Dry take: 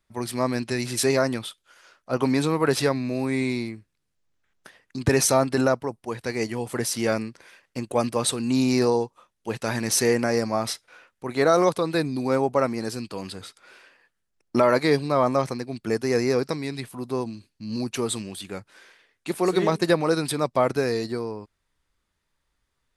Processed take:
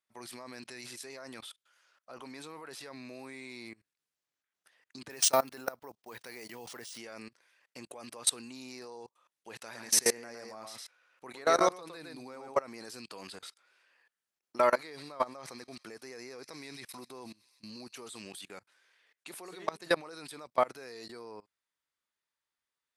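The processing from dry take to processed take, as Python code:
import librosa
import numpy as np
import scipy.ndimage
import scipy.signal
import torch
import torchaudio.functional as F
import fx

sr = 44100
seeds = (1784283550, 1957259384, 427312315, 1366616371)

y = fx.resample_bad(x, sr, factor=3, down='none', up='hold', at=(5.1, 6.98))
y = fx.echo_single(y, sr, ms=110, db=-5.5, at=(9.71, 12.6), fade=0.02)
y = fx.echo_wet_highpass(y, sr, ms=128, feedback_pct=75, hz=3500.0, wet_db=-12.0, at=(14.58, 18.17))
y = fx.highpass(y, sr, hz=850.0, slope=6)
y = fx.level_steps(y, sr, step_db=23)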